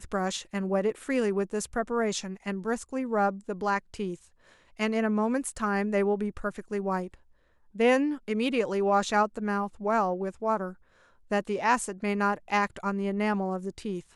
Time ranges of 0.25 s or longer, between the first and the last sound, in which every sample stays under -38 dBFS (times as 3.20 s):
4.15–4.79 s
7.14–7.76 s
10.73–11.31 s